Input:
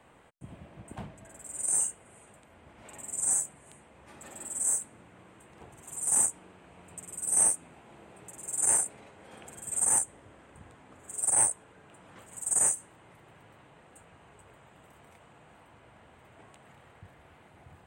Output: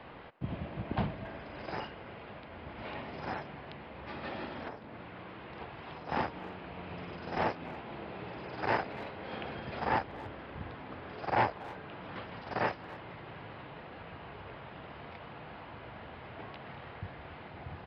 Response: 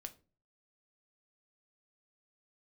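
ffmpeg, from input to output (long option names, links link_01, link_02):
-filter_complex "[0:a]asettb=1/sr,asplit=3[link_01][link_02][link_03];[link_01]atrim=end=4.684[link_04];[link_02]atrim=start=4.68:end=6.09,asetpts=PTS-STARTPTS,afade=type=in:duration=0.004:curve=qsin,afade=type=out:start_time=1.406:duration=0.004:curve=qsin,acrossover=split=500|1000[link_05][link_06][link_07];[link_05]acompressor=threshold=-57dB:ratio=4[link_08];[link_06]acompressor=threshold=-57dB:ratio=4[link_09];[link_07]acompressor=threshold=-38dB:ratio=4[link_10];[link_08][link_09][link_10]amix=inputs=3:normalize=0[link_11];[link_03]atrim=start=6.086[link_12];[link_04][link_11]acrossfade=duration=0.004:curve1=hsin:curve2=qsin[link_13];[link_13][link_12]acrossfade=duration=0.004:curve1=qsin:curve2=hsin,aresample=11025,aresample=44100,asplit=2[link_14][link_15];[link_15]adelay=280,highpass=300,lowpass=3400,asoftclip=type=hard:threshold=-34dB,volume=-17dB[link_16];[link_14][link_16]amix=inputs=2:normalize=0,volume=9.5dB"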